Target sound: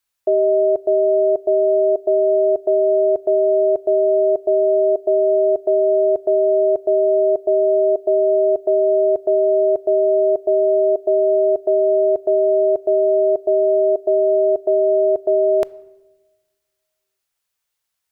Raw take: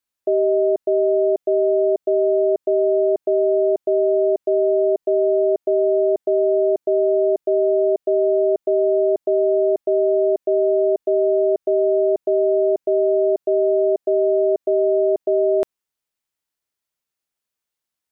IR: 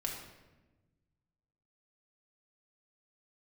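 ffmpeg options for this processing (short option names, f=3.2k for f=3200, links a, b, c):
-filter_complex "[0:a]equalizer=f=270:w=0.82:g=-9,asplit=2[a][b];[1:a]atrim=start_sample=2205[c];[b][c]afir=irnorm=-1:irlink=0,volume=-19dB[d];[a][d]amix=inputs=2:normalize=0,volume=6dB"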